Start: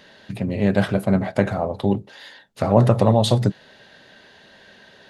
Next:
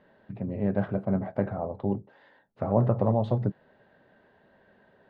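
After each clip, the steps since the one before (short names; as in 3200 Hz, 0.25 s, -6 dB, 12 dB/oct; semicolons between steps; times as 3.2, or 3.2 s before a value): LPF 1200 Hz 12 dB/oct; gain -8 dB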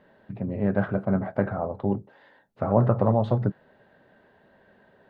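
dynamic EQ 1400 Hz, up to +7 dB, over -51 dBFS, Q 2; gain +2.5 dB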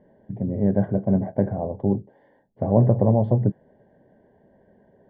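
running mean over 34 samples; gain +4.5 dB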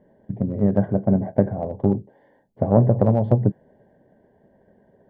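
transient shaper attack +6 dB, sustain +2 dB; gain -1 dB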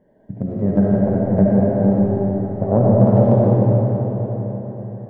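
digital reverb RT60 4.5 s, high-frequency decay 0.75×, pre-delay 30 ms, DRR -6 dB; gain -2 dB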